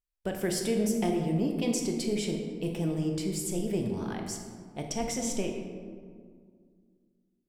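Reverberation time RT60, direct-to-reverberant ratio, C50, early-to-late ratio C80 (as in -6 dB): 2.0 s, 2.5 dB, 4.0 dB, 5.5 dB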